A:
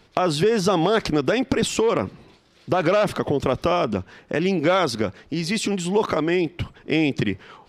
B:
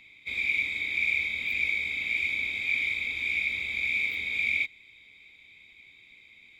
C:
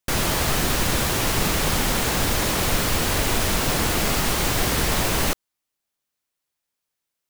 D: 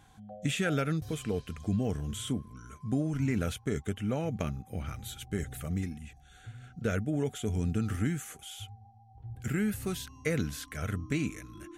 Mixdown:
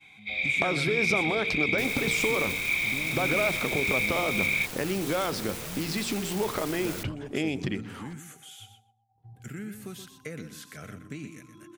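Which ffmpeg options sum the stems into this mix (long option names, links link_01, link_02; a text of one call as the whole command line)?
ffmpeg -i stem1.wav -i stem2.wav -i stem3.wav -i stem4.wav -filter_complex "[0:a]bandreject=frequency=57.13:width_type=h:width=4,bandreject=frequency=114.26:width_type=h:width=4,bandreject=frequency=171.39:width_type=h:width=4,bandreject=frequency=228.52:width_type=h:width=4,bandreject=frequency=285.65:width_type=h:width=4,bandreject=frequency=342.78:width_type=h:width=4,bandreject=frequency=399.91:width_type=h:width=4,bandreject=frequency=457.04:width_type=h:width=4,bandreject=frequency=514.17:width_type=h:width=4,acompressor=threshold=-37dB:ratio=2,adelay=450,volume=2dB,asplit=2[link_01][link_02];[link_02]volume=-19.5dB[link_03];[1:a]highshelf=frequency=5700:width_type=q:width=1.5:gain=-9.5,volume=-1dB[link_04];[2:a]aeval=exprs='(mod(7.08*val(0)+1,2)-1)/7.08':channel_layout=same,adelay=1700,volume=-16.5dB[link_05];[3:a]acompressor=threshold=-35dB:ratio=2.5,highpass=frequency=120:width=0.5412,highpass=frequency=120:width=1.3066,volume=-2.5dB,asplit=2[link_06][link_07];[link_07]volume=-9.5dB[link_08];[link_03][link_08]amix=inputs=2:normalize=0,aecho=0:1:124|248|372:1|0.21|0.0441[link_09];[link_01][link_04][link_05][link_06][link_09]amix=inputs=5:normalize=0,agate=range=-33dB:threshold=-53dB:ratio=3:detection=peak" out.wav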